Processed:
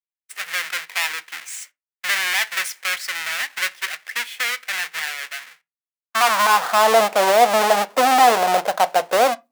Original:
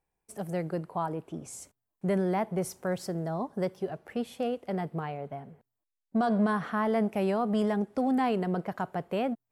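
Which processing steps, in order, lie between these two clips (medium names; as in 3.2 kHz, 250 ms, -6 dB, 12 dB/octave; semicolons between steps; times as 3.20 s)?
square wave that keeps the level; expander -43 dBFS; high-pass sweep 1.9 kHz -> 650 Hz, 5.57–6.91 s; on a send: reverberation RT60 0.20 s, pre-delay 4 ms, DRR 12.5 dB; on the sum: trim +8 dB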